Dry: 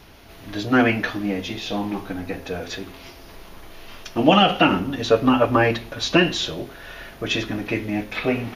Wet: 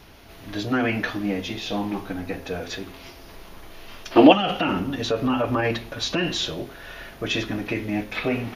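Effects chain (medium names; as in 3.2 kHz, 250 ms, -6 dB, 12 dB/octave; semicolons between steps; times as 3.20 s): peak limiter -13 dBFS, peak gain reduction 11 dB; time-frequency box 4.12–4.33 s, 240–5100 Hz +12 dB; trim -1 dB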